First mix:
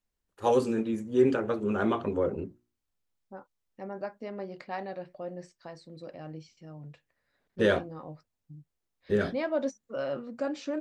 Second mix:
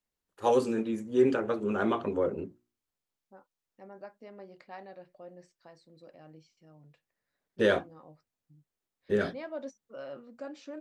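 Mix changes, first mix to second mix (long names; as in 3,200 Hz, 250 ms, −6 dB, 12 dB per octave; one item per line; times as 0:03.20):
second voice −9.0 dB
master: add low-shelf EQ 100 Hz −11 dB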